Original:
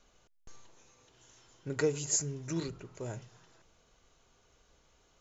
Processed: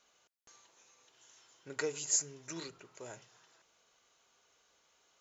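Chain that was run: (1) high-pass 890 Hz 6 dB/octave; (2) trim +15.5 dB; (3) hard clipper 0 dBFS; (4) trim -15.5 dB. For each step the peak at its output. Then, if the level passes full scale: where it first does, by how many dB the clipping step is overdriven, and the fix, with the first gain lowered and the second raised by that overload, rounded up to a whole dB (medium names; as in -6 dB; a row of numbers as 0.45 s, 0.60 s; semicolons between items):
-18.0 dBFS, -2.5 dBFS, -2.5 dBFS, -18.0 dBFS; nothing clips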